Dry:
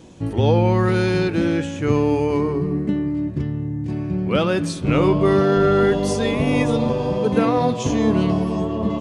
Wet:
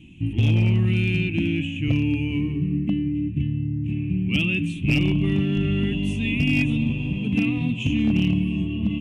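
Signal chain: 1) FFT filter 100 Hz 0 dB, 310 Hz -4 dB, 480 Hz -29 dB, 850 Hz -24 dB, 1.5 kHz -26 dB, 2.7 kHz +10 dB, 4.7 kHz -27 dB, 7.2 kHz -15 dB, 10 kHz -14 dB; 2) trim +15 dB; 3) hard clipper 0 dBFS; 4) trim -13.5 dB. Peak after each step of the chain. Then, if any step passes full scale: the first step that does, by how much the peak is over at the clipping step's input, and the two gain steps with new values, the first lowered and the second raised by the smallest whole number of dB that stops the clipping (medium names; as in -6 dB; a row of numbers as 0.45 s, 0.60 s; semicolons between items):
-8.0 dBFS, +7.0 dBFS, 0.0 dBFS, -13.5 dBFS; step 2, 7.0 dB; step 2 +8 dB, step 4 -6.5 dB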